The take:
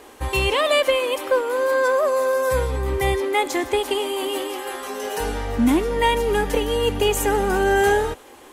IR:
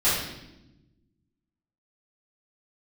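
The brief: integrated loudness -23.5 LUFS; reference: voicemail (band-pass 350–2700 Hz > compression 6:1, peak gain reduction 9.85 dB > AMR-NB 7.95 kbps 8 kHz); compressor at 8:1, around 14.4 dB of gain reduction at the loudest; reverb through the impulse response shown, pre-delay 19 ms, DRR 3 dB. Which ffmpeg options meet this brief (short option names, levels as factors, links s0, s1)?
-filter_complex "[0:a]acompressor=threshold=0.0355:ratio=8,asplit=2[s0][s1];[1:a]atrim=start_sample=2205,adelay=19[s2];[s1][s2]afir=irnorm=-1:irlink=0,volume=0.126[s3];[s0][s3]amix=inputs=2:normalize=0,highpass=350,lowpass=2700,acompressor=threshold=0.0178:ratio=6,volume=6.31" -ar 8000 -c:a libopencore_amrnb -b:a 7950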